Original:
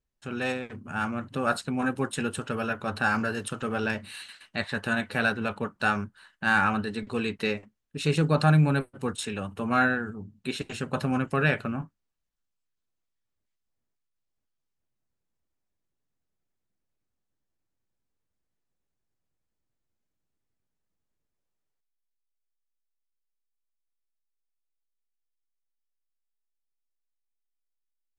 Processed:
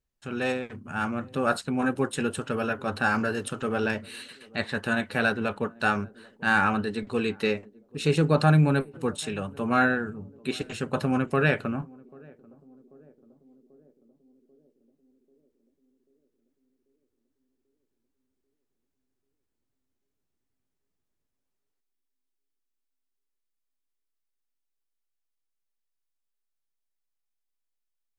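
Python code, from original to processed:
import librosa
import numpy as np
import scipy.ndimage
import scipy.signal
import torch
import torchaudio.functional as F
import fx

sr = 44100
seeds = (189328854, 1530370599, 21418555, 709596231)

p1 = fx.dynamic_eq(x, sr, hz=410.0, q=1.1, threshold_db=-36.0, ratio=4.0, max_db=4)
y = p1 + fx.echo_banded(p1, sr, ms=789, feedback_pct=65, hz=330.0, wet_db=-23, dry=0)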